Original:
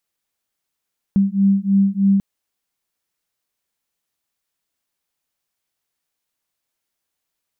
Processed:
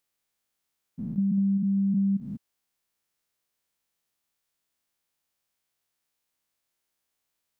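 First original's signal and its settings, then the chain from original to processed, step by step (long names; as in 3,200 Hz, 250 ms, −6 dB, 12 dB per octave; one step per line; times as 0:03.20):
two tones that beat 195 Hz, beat 3.2 Hz, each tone −16 dBFS 1.04 s
spectrum averaged block by block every 200 ms
downward compressor 6 to 1, threshold −23 dBFS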